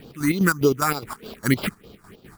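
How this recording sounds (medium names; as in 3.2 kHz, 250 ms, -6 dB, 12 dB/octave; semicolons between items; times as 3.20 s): aliases and images of a low sample rate 6.2 kHz, jitter 0%; phasing stages 4, 3.3 Hz, lowest notch 460–1900 Hz; chopped level 4.9 Hz, depth 60%, duty 55%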